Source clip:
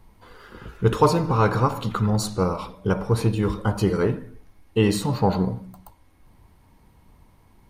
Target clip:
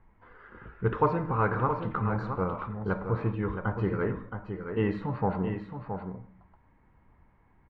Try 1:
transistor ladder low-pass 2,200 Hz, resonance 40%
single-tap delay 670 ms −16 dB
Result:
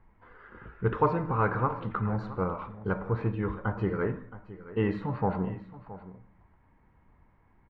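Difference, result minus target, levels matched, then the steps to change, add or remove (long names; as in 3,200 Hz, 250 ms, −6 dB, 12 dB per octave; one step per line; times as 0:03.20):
echo-to-direct −8.5 dB
change: single-tap delay 670 ms −7.5 dB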